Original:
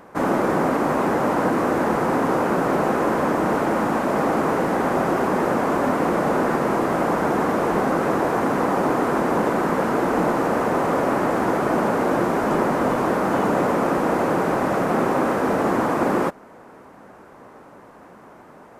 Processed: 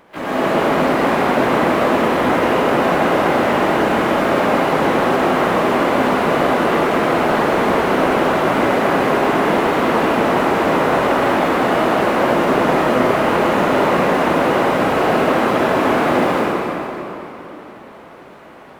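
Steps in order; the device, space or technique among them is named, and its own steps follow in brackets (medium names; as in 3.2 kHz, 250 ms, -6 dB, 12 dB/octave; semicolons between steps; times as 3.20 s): shimmer-style reverb (harmony voices +12 st -5 dB; reverberation RT60 3.3 s, pre-delay 90 ms, DRR -8.5 dB); trim -5.5 dB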